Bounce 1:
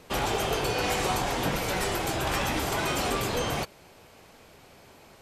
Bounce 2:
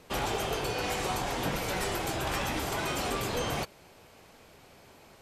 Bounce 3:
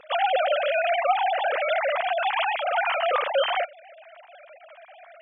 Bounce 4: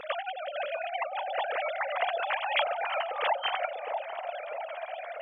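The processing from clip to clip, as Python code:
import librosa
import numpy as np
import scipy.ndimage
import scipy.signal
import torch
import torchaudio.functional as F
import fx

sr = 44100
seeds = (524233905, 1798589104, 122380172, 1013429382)

y1 = fx.rider(x, sr, range_db=10, speed_s=0.5)
y1 = F.gain(torch.from_numpy(y1), -3.5).numpy()
y2 = fx.sine_speech(y1, sr)
y2 = F.gain(torch.from_numpy(y2), 8.0).numpy()
y3 = fx.over_compress(y2, sr, threshold_db=-30.0, ratio=-0.5)
y3 = fx.echo_wet_bandpass(y3, sr, ms=644, feedback_pct=50, hz=440.0, wet_db=-4.5)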